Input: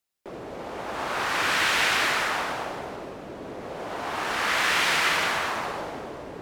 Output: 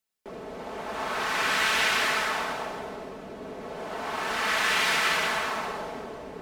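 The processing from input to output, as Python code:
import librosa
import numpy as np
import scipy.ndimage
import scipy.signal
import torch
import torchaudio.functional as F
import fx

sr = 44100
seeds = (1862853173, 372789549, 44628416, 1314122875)

y = x + 0.51 * np.pad(x, (int(4.6 * sr / 1000.0), 0))[:len(x)]
y = y * 10.0 ** (-2.5 / 20.0)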